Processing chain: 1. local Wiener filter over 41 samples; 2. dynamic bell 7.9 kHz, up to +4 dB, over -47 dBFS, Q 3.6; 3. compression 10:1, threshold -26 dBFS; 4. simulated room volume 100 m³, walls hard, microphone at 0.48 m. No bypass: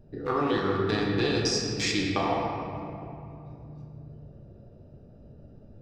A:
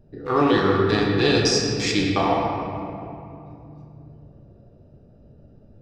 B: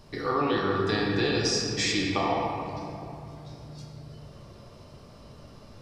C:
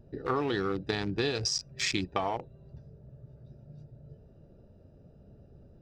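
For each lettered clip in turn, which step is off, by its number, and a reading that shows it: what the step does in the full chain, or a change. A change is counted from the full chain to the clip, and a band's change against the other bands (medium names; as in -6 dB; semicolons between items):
3, mean gain reduction 2.5 dB; 1, 125 Hz band -2.0 dB; 4, echo-to-direct 2.0 dB to none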